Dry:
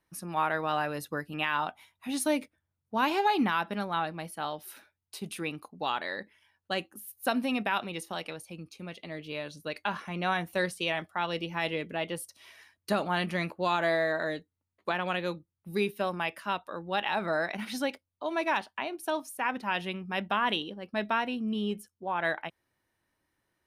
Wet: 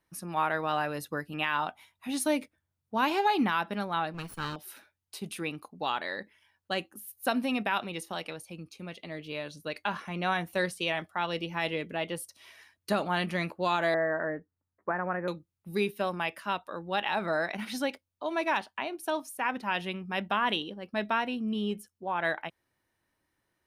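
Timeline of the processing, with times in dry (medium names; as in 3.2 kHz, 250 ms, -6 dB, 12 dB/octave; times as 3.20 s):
4.14–4.56 s: comb filter that takes the minimum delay 0.72 ms
13.94–15.28 s: steep low-pass 1.9 kHz 48 dB/octave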